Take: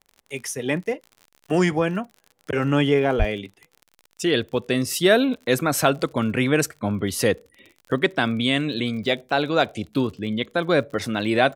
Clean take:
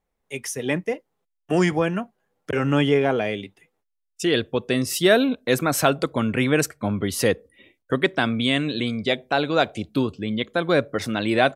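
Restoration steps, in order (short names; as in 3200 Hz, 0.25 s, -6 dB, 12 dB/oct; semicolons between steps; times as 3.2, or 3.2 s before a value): de-click; 3.18–3.3 HPF 140 Hz 24 dB/oct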